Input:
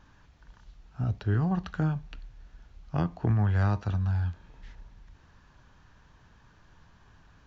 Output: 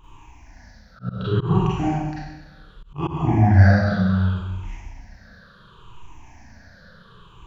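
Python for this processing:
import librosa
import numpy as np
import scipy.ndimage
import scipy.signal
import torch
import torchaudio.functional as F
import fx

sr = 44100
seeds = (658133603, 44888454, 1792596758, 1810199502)

y = fx.spec_ripple(x, sr, per_octave=0.67, drift_hz=-0.68, depth_db=22)
y = fx.rev_schroeder(y, sr, rt60_s=1.1, comb_ms=33, drr_db=-8.5)
y = fx.auto_swell(y, sr, attack_ms=149.0)
y = F.gain(torch.from_numpy(y), -2.0).numpy()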